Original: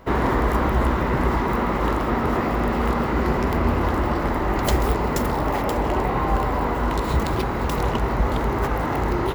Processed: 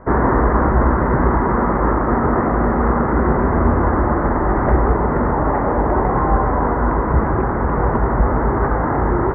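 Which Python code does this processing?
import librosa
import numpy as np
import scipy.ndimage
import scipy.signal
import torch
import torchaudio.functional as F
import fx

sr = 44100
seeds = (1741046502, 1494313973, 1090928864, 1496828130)

y = scipy.signal.sosfilt(scipy.signal.butter(8, 1800.0, 'lowpass', fs=sr, output='sos'), x)
y = F.gain(torch.from_numpy(y), 5.5).numpy()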